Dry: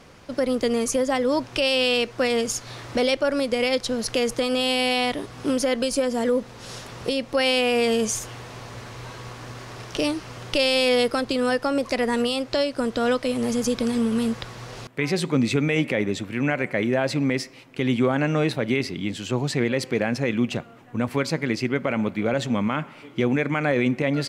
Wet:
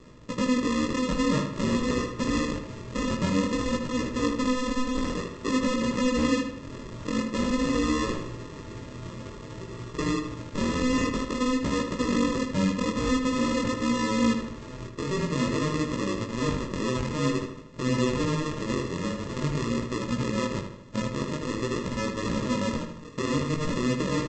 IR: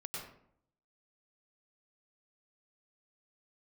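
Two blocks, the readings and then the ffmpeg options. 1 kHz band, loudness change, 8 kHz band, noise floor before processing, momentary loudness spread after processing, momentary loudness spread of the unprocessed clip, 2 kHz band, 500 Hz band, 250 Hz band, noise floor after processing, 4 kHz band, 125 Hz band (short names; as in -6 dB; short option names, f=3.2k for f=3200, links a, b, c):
-2.5 dB, -4.0 dB, -5.0 dB, -45 dBFS, 10 LU, 12 LU, -7.0 dB, -7.5 dB, -1.5 dB, -42 dBFS, -8.5 dB, -1.0 dB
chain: -filter_complex "[0:a]highshelf=f=4.7k:g=-4.5,alimiter=limit=-18dB:level=0:latency=1:release=59,aresample=16000,acrusher=samples=21:mix=1:aa=0.000001,aresample=44100,flanger=delay=16:depth=7.4:speed=0.5,asplit=2[a][b];[b]adelay=77,lowpass=f=4.2k:p=1,volume=-6.5dB,asplit=2[c][d];[d]adelay=77,lowpass=f=4.2k:p=1,volume=0.49,asplit=2[e][f];[f]adelay=77,lowpass=f=4.2k:p=1,volume=0.49,asplit=2[g][h];[h]adelay=77,lowpass=f=4.2k:p=1,volume=0.49,asplit=2[i][j];[j]adelay=77,lowpass=f=4.2k:p=1,volume=0.49,asplit=2[k][l];[l]adelay=77,lowpass=f=4.2k:p=1,volume=0.49[m];[a][c][e][g][i][k][m]amix=inputs=7:normalize=0,volume=2dB"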